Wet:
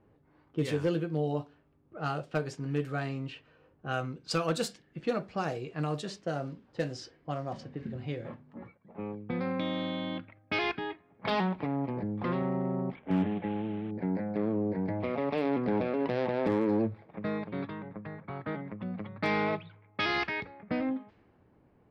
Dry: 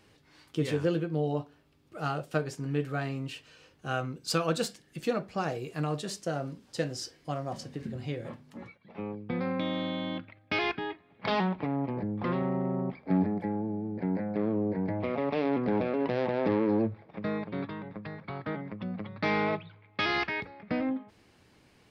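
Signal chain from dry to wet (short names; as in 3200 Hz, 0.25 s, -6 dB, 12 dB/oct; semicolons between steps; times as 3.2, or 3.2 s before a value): 12.95–13.91 CVSD 16 kbps; low-pass opened by the level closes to 900 Hz, open at -26.5 dBFS; hard clip -19 dBFS, distortion -29 dB; gain -1 dB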